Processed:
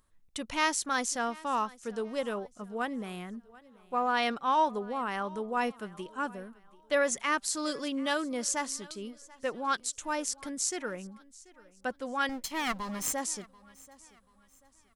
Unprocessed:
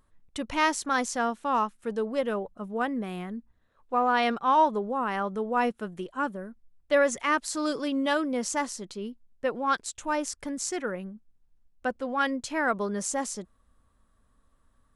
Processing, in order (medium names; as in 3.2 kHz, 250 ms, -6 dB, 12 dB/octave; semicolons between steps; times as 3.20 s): 12.29–13.13 s: comb filter that takes the minimum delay 0.95 ms; treble shelf 2.6 kHz +8.5 dB; on a send: feedback delay 736 ms, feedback 36%, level -22 dB; on the sum: trim -5.5 dB